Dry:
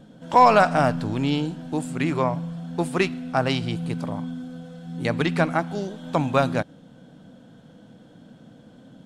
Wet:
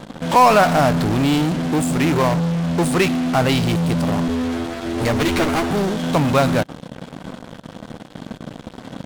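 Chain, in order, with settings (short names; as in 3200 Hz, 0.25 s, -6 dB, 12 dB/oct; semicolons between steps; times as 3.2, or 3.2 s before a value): 4.28–5.71 minimum comb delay 8.8 ms; in parallel at -7.5 dB: fuzz box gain 43 dB, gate -46 dBFS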